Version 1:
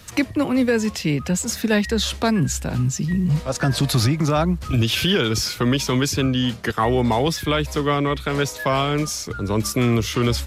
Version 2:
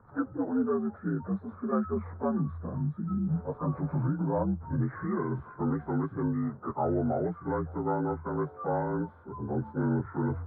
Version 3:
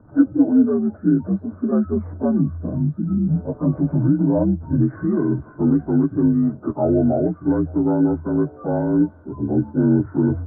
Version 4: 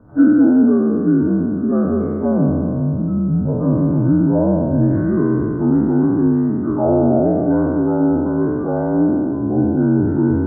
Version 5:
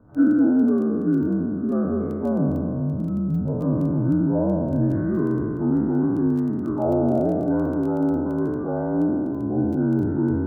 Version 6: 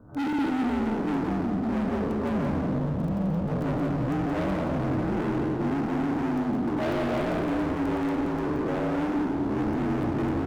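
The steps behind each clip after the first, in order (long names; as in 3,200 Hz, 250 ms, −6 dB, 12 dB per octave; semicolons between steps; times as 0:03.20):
partials spread apart or drawn together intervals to 81%; elliptic low-pass filter 1,400 Hz, stop band 50 dB; level −8 dB
tilt shelving filter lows +9.5 dB, about 810 Hz; hollow resonant body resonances 300/620/1,500 Hz, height 12 dB
peak hold with a decay on every bin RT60 2.59 s
surface crackle 11 per second −28 dBFS; level −6 dB
gain into a clipping stage and back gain 28.5 dB; on a send: single-tap delay 175 ms −6 dB; on the sum: level +2 dB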